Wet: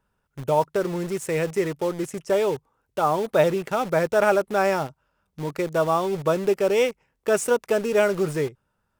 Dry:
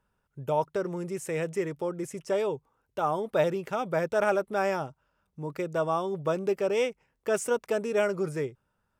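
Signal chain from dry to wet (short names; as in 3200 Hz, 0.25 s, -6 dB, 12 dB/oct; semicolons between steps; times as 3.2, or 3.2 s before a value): in parallel at -6 dB: bit-crush 6-bit; on the sum: vibrato 1.9 Hz 9.2 cents; gain +2.5 dB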